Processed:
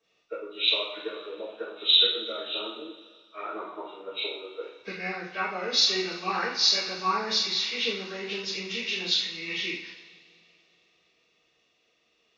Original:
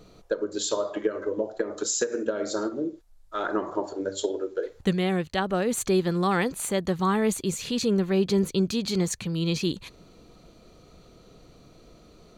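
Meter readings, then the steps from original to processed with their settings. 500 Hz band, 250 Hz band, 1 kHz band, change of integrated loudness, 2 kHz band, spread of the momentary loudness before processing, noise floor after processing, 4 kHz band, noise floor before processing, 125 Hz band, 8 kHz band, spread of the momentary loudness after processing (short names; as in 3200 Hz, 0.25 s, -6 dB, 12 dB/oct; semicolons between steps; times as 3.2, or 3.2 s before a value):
-9.0 dB, -14.5 dB, -1.5 dB, +0.5 dB, +3.0 dB, 7 LU, -70 dBFS, +11.5 dB, -54 dBFS, -18.5 dB, -6.5 dB, 18 LU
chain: nonlinear frequency compression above 1100 Hz 1.5:1; differentiator; two-slope reverb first 0.57 s, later 3.8 s, from -18 dB, DRR -9 dB; three-band expander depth 40%; gain +4 dB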